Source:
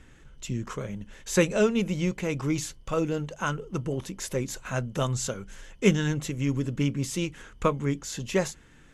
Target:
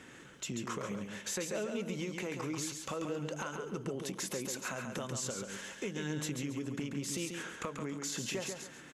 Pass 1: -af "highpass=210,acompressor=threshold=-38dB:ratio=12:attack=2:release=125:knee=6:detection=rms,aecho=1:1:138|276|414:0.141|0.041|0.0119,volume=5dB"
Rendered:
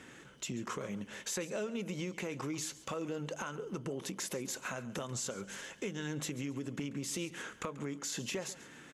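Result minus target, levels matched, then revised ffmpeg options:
echo-to-direct -11.5 dB
-af "highpass=210,acompressor=threshold=-38dB:ratio=12:attack=2:release=125:knee=6:detection=rms,aecho=1:1:138|276|414|552:0.531|0.154|0.0446|0.0129,volume=5dB"

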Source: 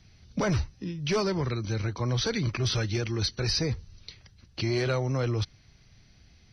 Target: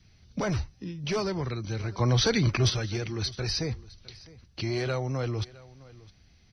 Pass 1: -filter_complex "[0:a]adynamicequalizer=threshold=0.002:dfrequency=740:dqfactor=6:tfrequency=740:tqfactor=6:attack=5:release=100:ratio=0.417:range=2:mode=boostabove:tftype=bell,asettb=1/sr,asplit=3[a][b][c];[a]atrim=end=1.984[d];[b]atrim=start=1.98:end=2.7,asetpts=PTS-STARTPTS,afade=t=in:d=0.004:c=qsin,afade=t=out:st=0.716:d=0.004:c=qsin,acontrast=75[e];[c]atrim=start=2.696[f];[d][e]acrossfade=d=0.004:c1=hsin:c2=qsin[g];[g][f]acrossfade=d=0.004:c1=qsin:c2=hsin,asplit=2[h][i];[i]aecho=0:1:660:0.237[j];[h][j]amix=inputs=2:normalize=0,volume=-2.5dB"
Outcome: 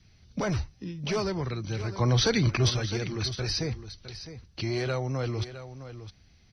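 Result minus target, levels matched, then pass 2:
echo-to-direct +8.5 dB
-filter_complex "[0:a]adynamicequalizer=threshold=0.002:dfrequency=740:dqfactor=6:tfrequency=740:tqfactor=6:attack=5:release=100:ratio=0.417:range=2:mode=boostabove:tftype=bell,asettb=1/sr,asplit=3[a][b][c];[a]atrim=end=1.984[d];[b]atrim=start=1.98:end=2.7,asetpts=PTS-STARTPTS,afade=t=in:d=0.004:c=qsin,afade=t=out:st=0.716:d=0.004:c=qsin,acontrast=75[e];[c]atrim=start=2.696[f];[d][e]acrossfade=d=0.004:c1=hsin:c2=qsin[g];[g][f]acrossfade=d=0.004:c1=qsin:c2=hsin,asplit=2[h][i];[i]aecho=0:1:660:0.0891[j];[h][j]amix=inputs=2:normalize=0,volume=-2.5dB"

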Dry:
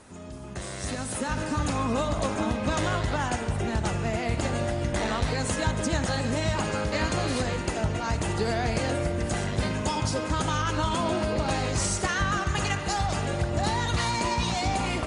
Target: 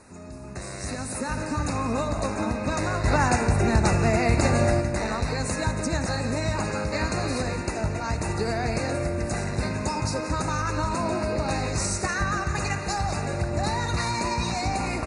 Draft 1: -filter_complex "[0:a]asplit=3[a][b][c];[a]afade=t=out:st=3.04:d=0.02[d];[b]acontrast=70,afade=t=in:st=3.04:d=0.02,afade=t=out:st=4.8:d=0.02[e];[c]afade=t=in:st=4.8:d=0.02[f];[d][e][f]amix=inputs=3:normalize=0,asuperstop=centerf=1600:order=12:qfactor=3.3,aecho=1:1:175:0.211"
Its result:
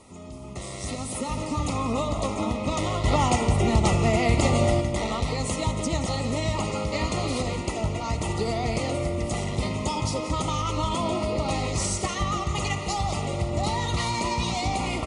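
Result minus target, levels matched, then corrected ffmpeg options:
2000 Hz band -3.5 dB
-filter_complex "[0:a]asplit=3[a][b][c];[a]afade=t=out:st=3.04:d=0.02[d];[b]acontrast=70,afade=t=in:st=3.04:d=0.02,afade=t=out:st=4.8:d=0.02[e];[c]afade=t=in:st=4.8:d=0.02[f];[d][e][f]amix=inputs=3:normalize=0,asuperstop=centerf=3200:order=12:qfactor=3.3,aecho=1:1:175:0.211"

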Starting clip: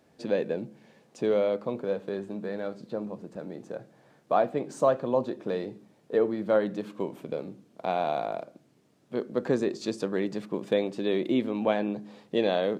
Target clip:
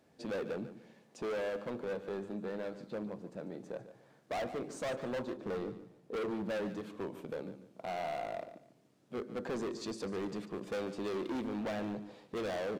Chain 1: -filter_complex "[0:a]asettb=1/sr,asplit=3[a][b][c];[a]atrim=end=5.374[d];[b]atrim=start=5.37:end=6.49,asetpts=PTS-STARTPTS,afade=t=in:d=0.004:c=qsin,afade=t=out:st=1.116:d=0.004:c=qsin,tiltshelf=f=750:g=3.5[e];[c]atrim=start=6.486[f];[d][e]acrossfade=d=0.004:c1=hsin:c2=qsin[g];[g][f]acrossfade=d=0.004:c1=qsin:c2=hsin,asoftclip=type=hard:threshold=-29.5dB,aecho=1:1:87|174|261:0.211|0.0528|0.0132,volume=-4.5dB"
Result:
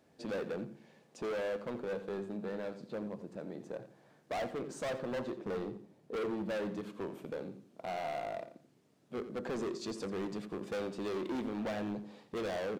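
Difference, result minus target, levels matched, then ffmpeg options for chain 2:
echo 58 ms early
-filter_complex "[0:a]asettb=1/sr,asplit=3[a][b][c];[a]atrim=end=5.374[d];[b]atrim=start=5.37:end=6.49,asetpts=PTS-STARTPTS,afade=t=in:d=0.004:c=qsin,afade=t=out:st=1.116:d=0.004:c=qsin,tiltshelf=f=750:g=3.5[e];[c]atrim=start=6.486[f];[d][e]acrossfade=d=0.004:c1=hsin:c2=qsin[g];[g][f]acrossfade=d=0.004:c1=qsin:c2=hsin,asoftclip=type=hard:threshold=-29.5dB,aecho=1:1:145|290|435:0.211|0.0528|0.0132,volume=-4.5dB"

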